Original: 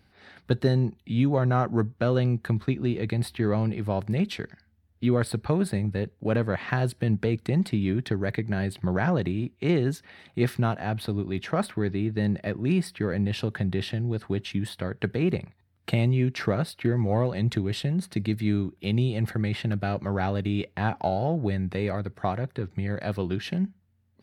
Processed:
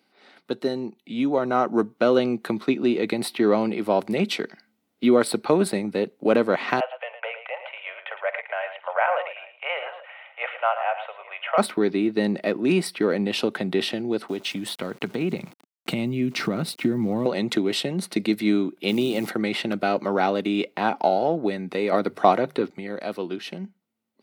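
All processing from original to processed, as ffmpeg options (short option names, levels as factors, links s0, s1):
-filter_complex "[0:a]asettb=1/sr,asplit=3[s0][s1][s2];[s0]atrim=end=6.804[s3];[s1]atrim=start=6.8:end=11.58,asetpts=PTS-STARTPTS,afade=t=in:d=0.004:c=qsin,afade=t=out:st=4.776:d=0.004:c=qsin,asuperpass=centerf=1300:order=20:qfactor=0.51,aecho=1:1:49|111|839:0.158|0.299|0.106,atrim=end_sample=210798[s4];[s2]atrim=start=11.576[s5];[s3][s4]acrossfade=d=0.004:c1=hsin:c2=qsin[s6];[s6][s5]acrossfade=d=0.004:c1=qsin:c2=hsin,asettb=1/sr,asplit=3[s7][s8][s9];[s7]atrim=end=14.284[s10];[s8]atrim=start=14.28:end=17.26,asetpts=PTS-STARTPTS,afade=t=in:d=0.004:c=qsin,afade=t=out:st=2.976:d=0.004:c=qsin,acompressor=threshold=0.0316:ratio=2.5:attack=3.2:release=140:knee=1:detection=peak,asubboost=boost=10:cutoff=200,aeval=exprs='val(0)*gte(abs(val(0)),0.00335)':c=same[s11];[s9]atrim=start=17.256[s12];[s10][s11]acrossfade=d=0.004:c1=hsin:c2=qsin[s13];[s13][s12]acrossfade=d=0.004:c1=qsin:c2=hsin,asettb=1/sr,asplit=3[s14][s15][s16];[s14]atrim=end=18.884[s17];[s15]atrim=start=18.88:end=19.28,asetpts=PTS-STARTPTS,afade=t=in:d=0.004:c=qsin,afade=t=out:st=0.396:d=0.004:c=qsin,aeval=exprs='val(0)+0.02*(sin(2*PI*60*n/s)+sin(2*PI*2*60*n/s)/2+sin(2*PI*3*60*n/s)/3+sin(2*PI*4*60*n/s)/4+sin(2*PI*5*60*n/s)/5)':c=same,acrusher=bits=9:dc=4:mix=0:aa=0.000001[s18];[s16]atrim=start=19.276[s19];[s17][s18]acrossfade=d=0.004:c1=hsin:c2=qsin[s20];[s20][s19]acrossfade=d=0.004:c1=qsin:c2=hsin,asettb=1/sr,asplit=3[s21][s22][s23];[s21]atrim=end=21.924[s24];[s22]atrim=start=21.92:end=22.7,asetpts=PTS-STARTPTS,afade=t=in:d=0.004:c=qsin,afade=t=out:st=0.776:d=0.004:c=qsin,bandreject=f=50:t=h:w=6,bandreject=f=100:t=h:w=6,bandreject=f=150:t=h:w=6,acontrast=82[s25];[s23]atrim=start=22.696[s26];[s24][s25]acrossfade=d=0.004:c1=hsin:c2=qsin[s27];[s27][s26]acrossfade=d=0.004:c1=qsin:c2=hsin,highpass=f=240:w=0.5412,highpass=f=240:w=1.3066,bandreject=f=1700:w=5.8,dynaudnorm=f=150:g=21:m=2.66"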